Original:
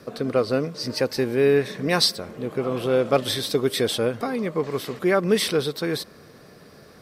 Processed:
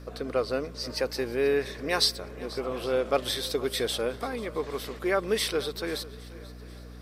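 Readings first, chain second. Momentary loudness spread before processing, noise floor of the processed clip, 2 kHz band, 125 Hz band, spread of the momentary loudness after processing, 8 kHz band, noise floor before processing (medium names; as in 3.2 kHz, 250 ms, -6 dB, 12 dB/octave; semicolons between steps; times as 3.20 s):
8 LU, -44 dBFS, -4.0 dB, -10.5 dB, 13 LU, -4.0 dB, -49 dBFS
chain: peaking EQ 150 Hz -12.5 dB 1.5 oct; hum 60 Hz, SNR 14 dB; shuffle delay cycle 812 ms, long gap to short 1.5:1, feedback 30%, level -19.5 dB; trim -4 dB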